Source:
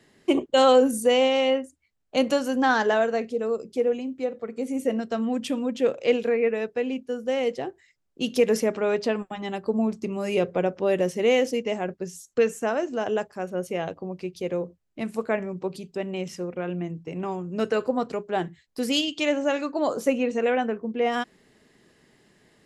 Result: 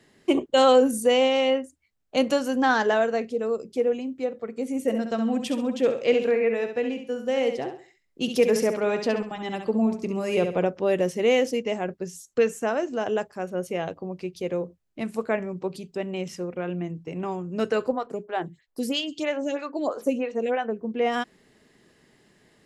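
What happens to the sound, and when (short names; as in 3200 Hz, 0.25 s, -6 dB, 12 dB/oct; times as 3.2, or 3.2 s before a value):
4.81–10.65 feedback echo 67 ms, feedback 31%, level -7.5 dB
17.92–20.81 photocell phaser 3.1 Hz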